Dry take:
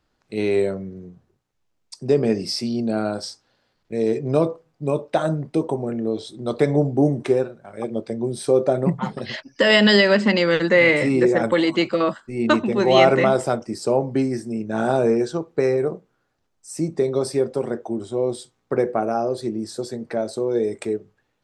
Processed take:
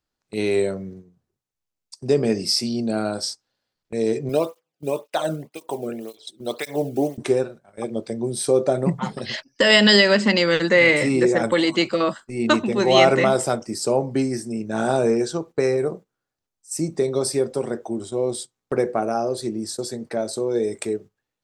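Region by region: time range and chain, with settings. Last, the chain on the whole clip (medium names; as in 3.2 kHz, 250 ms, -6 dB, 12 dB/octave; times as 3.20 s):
4.29–7.18 s: block-companded coder 7-bit + peaking EQ 2.8 kHz +7 dB 0.82 oct + cancelling through-zero flanger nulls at 1.9 Hz, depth 1.2 ms
whole clip: gate -36 dBFS, range -13 dB; treble shelf 4.6 kHz +11.5 dB; trim -1 dB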